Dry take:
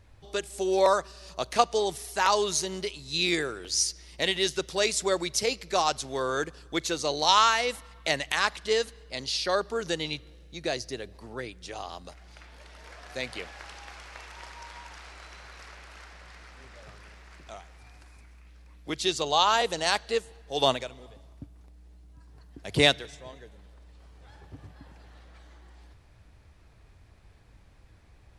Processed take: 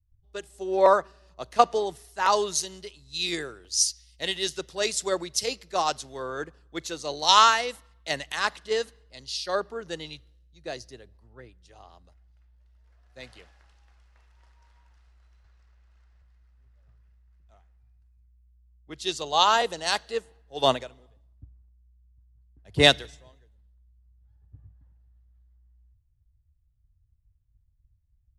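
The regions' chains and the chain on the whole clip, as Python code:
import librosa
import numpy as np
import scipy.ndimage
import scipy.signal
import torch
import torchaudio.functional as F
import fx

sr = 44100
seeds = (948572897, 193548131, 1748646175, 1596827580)

y = fx.chain(x, sr, fx.lowpass(hz=8900.0, slope=24),
    fx.band_squash(depth_pct=100), at=(15.44, 16.22))
y = fx.notch(y, sr, hz=2300.0, q=13.0)
y = fx.band_widen(y, sr, depth_pct=100)
y = y * librosa.db_to_amplitude(-4.5)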